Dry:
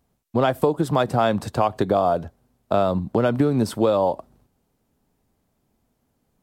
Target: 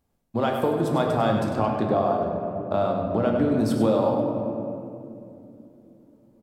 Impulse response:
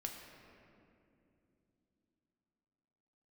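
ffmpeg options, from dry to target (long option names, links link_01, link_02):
-filter_complex "[0:a]asettb=1/sr,asplit=3[link_01][link_02][link_03];[link_01]atrim=end=1.444[link_04];[link_02]atrim=start=1.44:end=3.52,asetpts=PTS-STARTPTS,afade=type=in:duration=0.004:curve=qsin,afade=type=out:start_time=2.076:duration=0.004:curve=qsin,highshelf=frequency=5900:gain=-11.5[link_05];[link_03]atrim=start=3.516[link_06];[link_04][link_05]acrossfade=duration=0.004:curve1=hsin:curve2=qsin[link_07];[link_07][link_06]acrossfade=duration=0.004:curve1=qsin:curve2=hsin,asplit=2[link_08][link_09];[link_09]adelay=99.13,volume=-7dB,highshelf=frequency=4000:gain=-2.23[link_10];[link_08][link_10]amix=inputs=2:normalize=0[link_11];[1:a]atrim=start_sample=2205[link_12];[link_11][link_12]afir=irnorm=-1:irlink=0,volume=-1.5dB"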